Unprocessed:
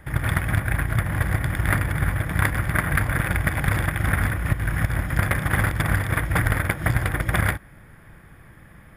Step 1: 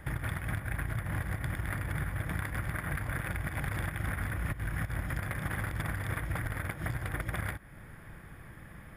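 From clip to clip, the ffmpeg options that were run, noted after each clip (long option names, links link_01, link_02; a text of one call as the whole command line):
ffmpeg -i in.wav -af "alimiter=limit=-18dB:level=0:latency=1:release=335,acompressor=threshold=-30dB:ratio=2.5,volume=-1.5dB" out.wav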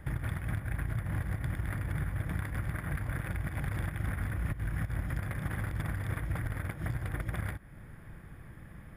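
ffmpeg -i in.wav -af "lowshelf=frequency=440:gain=6.5,volume=-5dB" out.wav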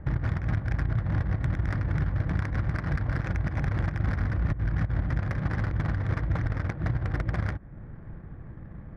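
ffmpeg -i in.wav -af "adynamicsmooth=sensitivity=5.5:basefreq=980,volume=7dB" out.wav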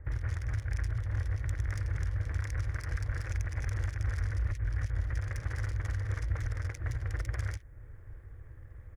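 ffmpeg -i in.wav -filter_complex "[0:a]firequalizer=gain_entry='entry(100,0);entry(170,-24);entry(310,-11);entry(470,-3);entry(690,-11);entry(1900,2);entry(4000,-1);entry(6400,14)':delay=0.05:min_phase=1,acrossover=split=2400[link_01][link_02];[link_02]adelay=50[link_03];[link_01][link_03]amix=inputs=2:normalize=0,volume=-3.5dB" out.wav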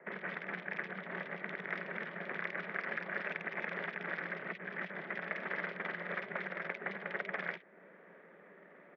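ffmpeg -i in.wav -af "highpass=frequency=210:width_type=q:width=0.5412,highpass=frequency=210:width_type=q:width=1.307,lowpass=frequency=3400:width_type=q:width=0.5176,lowpass=frequency=3400:width_type=q:width=0.7071,lowpass=frequency=3400:width_type=q:width=1.932,afreqshift=76,volume=7dB" out.wav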